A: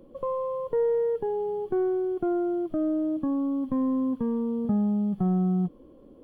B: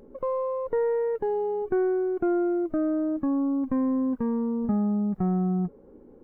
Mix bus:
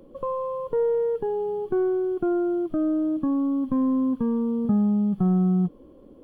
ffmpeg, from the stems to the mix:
ffmpeg -i stem1.wav -i stem2.wav -filter_complex "[0:a]volume=2dB[link_01];[1:a]volume=-11dB[link_02];[link_01][link_02]amix=inputs=2:normalize=0" out.wav

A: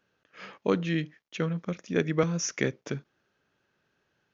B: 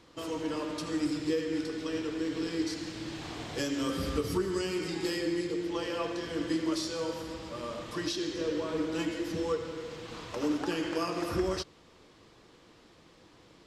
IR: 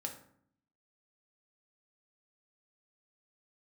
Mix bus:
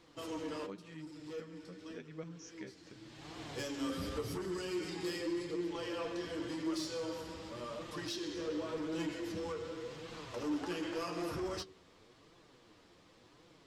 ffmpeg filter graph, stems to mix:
-filter_complex "[0:a]volume=-18.5dB,asplit=2[link_01][link_02];[1:a]asoftclip=type=tanh:threshold=-28dB,volume=-0.5dB[link_03];[link_02]apad=whole_len=602413[link_04];[link_03][link_04]sidechaincompress=threshold=-55dB:ratio=16:attack=25:release=705[link_05];[link_01][link_05]amix=inputs=2:normalize=0,bandreject=frequency=47.38:width_type=h:width=4,bandreject=frequency=94.76:width_type=h:width=4,bandreject=frequency=142.14:width_type=h:width=4,bandreject=frequency=189.52:width_type=h:width=4,bandreject=frequency=236.9:width_type=h:width=4,bandreject=frequency=284.28:width_type=h:width=4,bandreject=frequency=331.66:width_type=h:width=4,bandreject=frequency=379.04:width_type=h:width=4,flanger=delay=5.6:depth=6:regen=40:speed=0.89:shape=triangular"

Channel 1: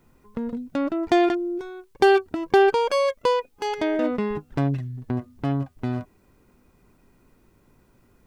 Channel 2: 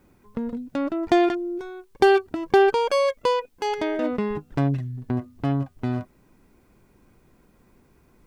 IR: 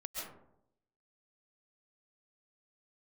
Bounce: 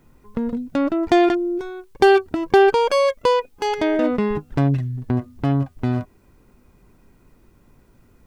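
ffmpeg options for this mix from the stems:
-filter_complex "[0:a]lowshelf=frequency=110:gain=6,volume=2dB[link_01];[1:a]alimiter=limit=-17.5dB:level=0:latency=1,volume=-7.5dB[link_02];[link_01][link_02]amix=inputs=2:normalize=0"

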